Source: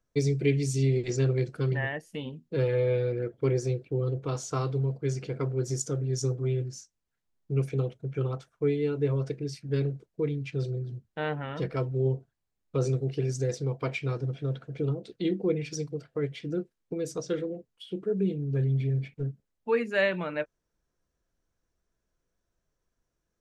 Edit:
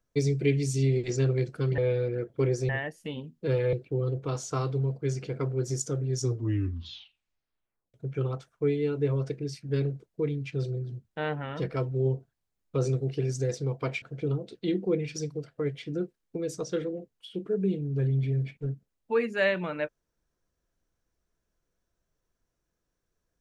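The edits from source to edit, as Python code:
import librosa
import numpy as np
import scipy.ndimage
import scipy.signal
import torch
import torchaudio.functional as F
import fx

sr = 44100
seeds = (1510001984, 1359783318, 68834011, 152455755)

y = fx.edit(x, sr, fx.move(start_s=2.82, length_s=0.91, to_s=1.78),
    fx.tape_stop(start_s=6.2, length_s=1.74),
    fx.cut(start_s=14.02, length_s=0.57), tone=tone)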